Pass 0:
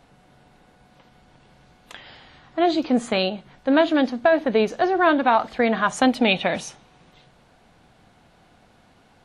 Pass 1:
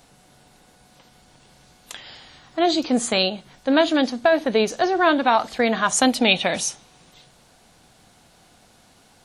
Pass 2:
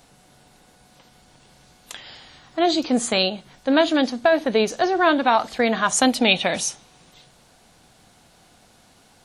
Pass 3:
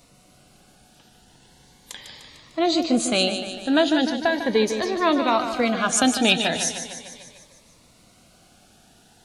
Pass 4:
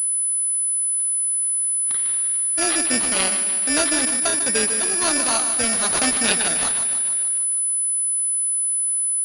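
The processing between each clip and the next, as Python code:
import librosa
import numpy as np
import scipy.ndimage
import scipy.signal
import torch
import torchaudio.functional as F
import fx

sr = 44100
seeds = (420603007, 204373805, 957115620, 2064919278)

y1 = fx.bass_treble(x, sr, bass_db=-1, treble_db=14)
y2 = y1
y3 = fx.echo_feedback(y2, sr, ms=150, feedback_pct=60, wet_db=-9)
y3 = fx.notch_cascade(y3, sr, direction='rising', hz=0.38)
y4 = (np.kron(y3[::6], np.eye(6)[0]) * 6)[:len(y3)]
y4 = fx.pwm(y4, sr, carrier_hz=10000.0)
y4 = y4 * librosa.db_to_amplitude(-7.0)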